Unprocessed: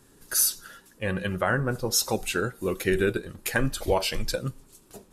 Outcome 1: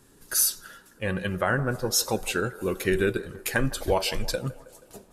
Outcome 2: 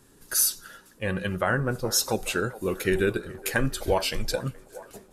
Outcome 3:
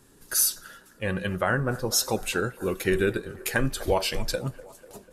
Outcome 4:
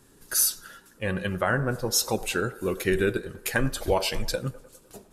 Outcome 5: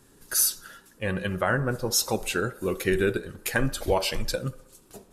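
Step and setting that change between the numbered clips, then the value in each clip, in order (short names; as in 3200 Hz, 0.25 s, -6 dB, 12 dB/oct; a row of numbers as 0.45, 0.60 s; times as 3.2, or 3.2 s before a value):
band-limited delay, time: 160, 423, 246, 101, 64 ms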